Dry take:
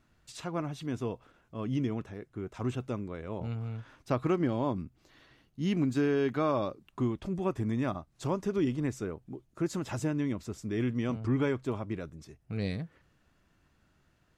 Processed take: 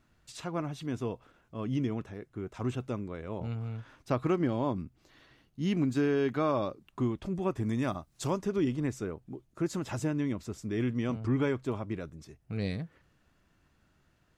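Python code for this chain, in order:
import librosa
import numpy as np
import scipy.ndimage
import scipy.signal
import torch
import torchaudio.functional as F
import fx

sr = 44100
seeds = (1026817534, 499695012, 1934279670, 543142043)

y = fx.high_shelf(x, sr, hz=fx.line((7.63, 5300.0), (8.37, 3300.0)), db=9.5, at=(7.63, 8.37), fade=0.02)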